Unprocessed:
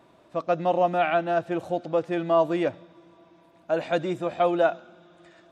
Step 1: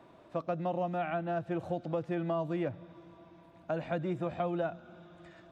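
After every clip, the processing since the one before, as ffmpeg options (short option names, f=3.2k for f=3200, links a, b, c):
-filter_complex "[0:a]asubboost=boost=2.5:cutoff=200,acrossover=split=220|2800[a][b][c];[a]acompressor=threshold=-38dB:ratio=4[d];[b]acompressor=threshold=-33dB:ratio=4[e];[c]acompressor=threshold=-59dB:ratio=4[f];[d][e][f]amix=inputs=3:normalize=0,highshelf=f=4.1k:g=-8.5"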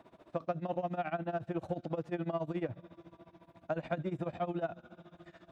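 -filter_complex "[0:a]tremolo=f=14:d=0.89,asplit=2[a][b];[b]asoftclip=type=tanh:threshold=-34.5dB,volume=-12dB[c];[a][c]amix=inputs=2:normalize=0"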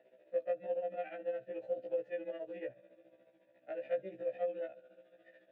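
-filter_complex "[0:a]aeval=exprs='0.1*(cos(1*acos(clip(val(0)/0.1,-1,1)))-cos(1*PI/2))+0.0251*(cos(2*acos(clip(val(0)/0.1,-1,1)))-cos(2*PI/2))':c=same,asplit=3[a][b][c];[a]bandpass=f=530:t=q:w=8,volume=0dB[d];[b]bandpass=f=1.84k:t=q:w=8,volume=-6dB[e];[c]bandpass=f=2.48k:t=q:w=8,volume=-9dB[f];[d][e][f]amix=inputs=3:normalize=0,afftfilt=real='re*1.73*eq(mod(b,3),0)':imag='im*1.73*eq(mod(b,3),0)':win_size=2048:overlap=0.75,volume=7.5dB"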